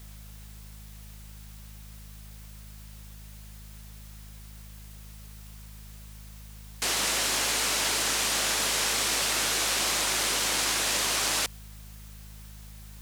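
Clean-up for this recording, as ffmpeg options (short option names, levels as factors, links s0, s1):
-af "bandreject=f=52.5:t=h:w=4,bandreject=f=105:t=h:w=4,bandreject=f=157.5:t=h:w=4,bandreject=f=210:t=h:w=4,afwtdn=0.0022"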